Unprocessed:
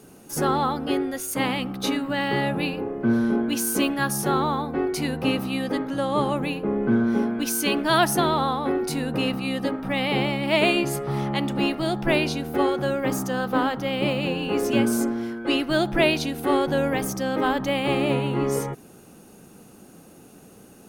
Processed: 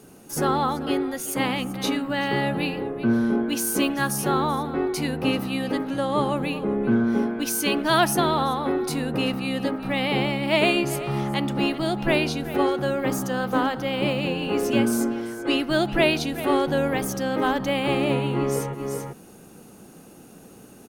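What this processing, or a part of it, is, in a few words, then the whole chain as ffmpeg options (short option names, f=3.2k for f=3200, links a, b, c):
ducked delay: -filter_complex "[0:a]asplit=3[a][b][c];[b]adelay=385,volume=-4.5dB[d];[c]apad=whole_len=937873[e];[d][e]sidechaincompress=threshold=-42dB:ratio=4:attack=16:release=111[f];[a][f]amix=inputs=2:normalize=0"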